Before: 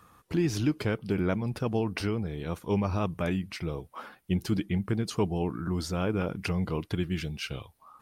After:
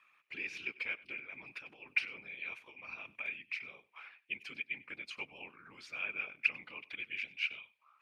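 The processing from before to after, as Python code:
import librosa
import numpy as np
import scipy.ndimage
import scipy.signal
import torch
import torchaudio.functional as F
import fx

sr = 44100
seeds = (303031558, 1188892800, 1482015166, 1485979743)

y = fx.over_compress(x, sr, threshold_db=-30.0, ratio=-0.5, at=(1.2, 3.43))
y = fx.whisperise(y, sr, seeds[0])
y = fx.bandpass_q(y, sr, hz=2400.0, q=11.0)
y = y + 10.0 ** (-20.5 / 20.0) * np.pad(y, (int(96 * sr / 1000.0), 0))[:len(y)]
y = F.gain(torch.from_numpy(y), 10.0).numpy()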